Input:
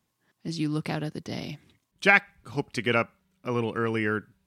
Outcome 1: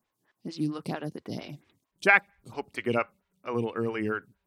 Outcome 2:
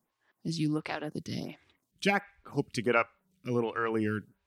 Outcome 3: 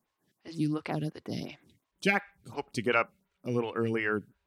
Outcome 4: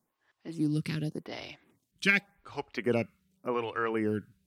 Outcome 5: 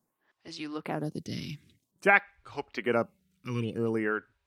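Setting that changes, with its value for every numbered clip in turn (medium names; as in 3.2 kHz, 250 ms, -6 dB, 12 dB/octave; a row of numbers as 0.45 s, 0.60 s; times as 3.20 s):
lamp-driven phase shifter, rate: 4.4 Hz, 1.4 Hz, 2.8 Hz, 0.88 Hz, 0.51 Hz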